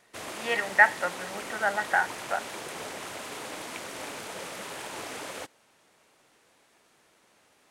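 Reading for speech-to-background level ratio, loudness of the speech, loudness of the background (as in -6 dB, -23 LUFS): 11.5 dB, -26.5 LUFS, -38.0 LUFS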